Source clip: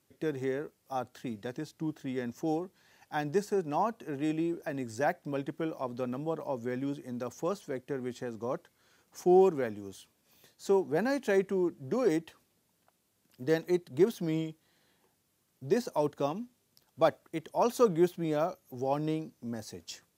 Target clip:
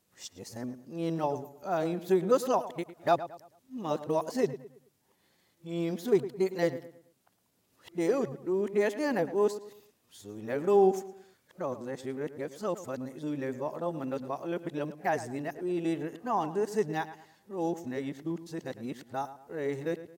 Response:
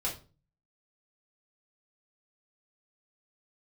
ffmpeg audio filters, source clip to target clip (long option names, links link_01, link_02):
-filter_complex "[0:a]areverse,asplit=2[link_01][link_02];[link_02]adelay=109,lowpass=frequency=2900:poles=1,volume=-13.5dB,asplit=2[link_03][link_04];[link_04]adelay=109,lowpass=frequency=2900:poles=1,volume=0.37,asplit=2[link_05][link_06];[link_06]adelay=109,lowpass=frequency=2900:poles=1,volume=0.37,asplit=2[link_07][link_08];[link_08]adelay=109,lowpass=frequency=2900:poles=1,volume=0.37[link_09];[link_01][link_03][link_05][link_07][link_09]amix=inputs=5:normalize=0,asetrate=46722,aresample=44100,atempo=0.943874"